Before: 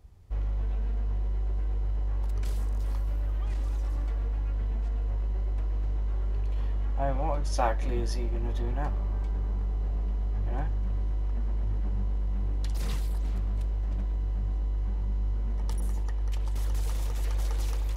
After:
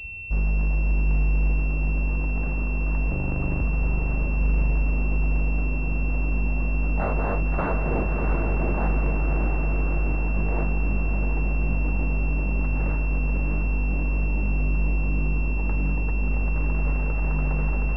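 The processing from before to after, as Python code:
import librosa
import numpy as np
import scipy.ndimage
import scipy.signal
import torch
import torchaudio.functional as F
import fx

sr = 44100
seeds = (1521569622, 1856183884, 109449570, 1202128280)

y = fx.octave_divider(x, sr, octaves=1, level_db=0.0, at=(3.1, 3.62))
y = 10.0 ** (-26.5 / 20.0) * (np.abs((y / 10.0 ** (-26.5 / 20.0) + 3.0) % 4.0 - 2.0) - 1.0)
y = fx.echo_diffused(y, sr, ms=667, feedback_pct=70, wet_db=-5.0)
y = fx.pwm(y, sr, carrier_hz=2700.0)
y = y * librosa.db_to_amplitude(8.5)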